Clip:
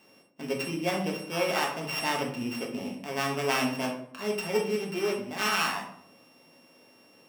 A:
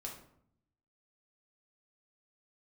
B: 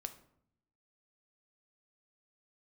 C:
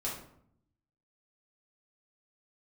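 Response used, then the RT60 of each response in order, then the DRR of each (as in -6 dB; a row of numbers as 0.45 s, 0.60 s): A; 0.65 s, 0.70 s, 0.65 s; -1.0 dB, 8.0 dB, -6.0 dB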